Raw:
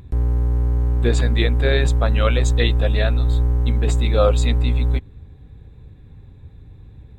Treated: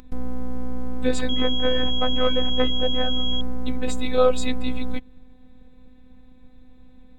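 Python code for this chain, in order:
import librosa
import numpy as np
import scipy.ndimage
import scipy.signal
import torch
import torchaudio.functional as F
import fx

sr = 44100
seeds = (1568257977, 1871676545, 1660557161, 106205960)

y = fx.robotise(x, sr, hz=254.0)
y = fx.pwm(y, sr, carrier_hz=3300.0, at=(1.29, 3.41))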